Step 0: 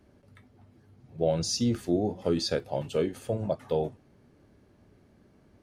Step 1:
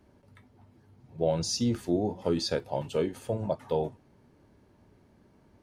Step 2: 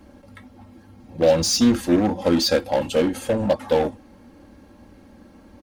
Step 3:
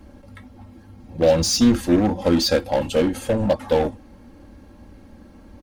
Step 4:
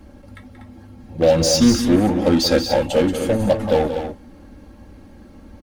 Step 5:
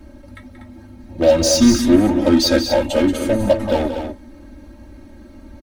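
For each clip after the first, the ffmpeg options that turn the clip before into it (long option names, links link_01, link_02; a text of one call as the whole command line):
ffmpeg -i in.wav -af "equalizer=frequency=930:width=7.4:gain=8.5,volume=-1dB" out.wav
ffmpeg -i in.wav -filter_complex "[0:a]aecho=1:1:3.7:0.78,asplit=2[link_01][link_02];[link_02]aeval=exprs='0.0266*(abs(mod(val(0)/0.0266+3,4)-2)-1)':channel_layout=same,volume=-5dB[link_03];[link_01][link_03]amix=inputs=2:normalize=0,volume=7.5dB" out.wav
ffmpeg -i in.wav -af "lowshelf=frequency=82:gain=10.5" out.wav
ffmpeg -i in.wav -filter_complex "[0:a]bandreject=frequency=1000:width=23,asplit=2[link_01][link_02];[link_02]aecho=0:1:180.8|242:0.316|0.355[link_03];[link_01][link_03]amix=inputs=2:normalize=0,volume=1.5dB" out.wav
ffmpeg -i in.wav -af "aecho=1:1:3.2:0.68" out.wav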